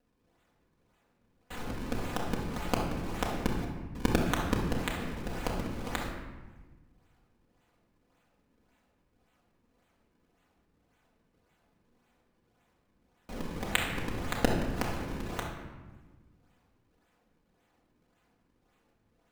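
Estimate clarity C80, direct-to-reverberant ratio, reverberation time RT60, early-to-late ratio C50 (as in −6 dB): 5.5 dB, −3.5 dB, 1.3 s, 3.0 dB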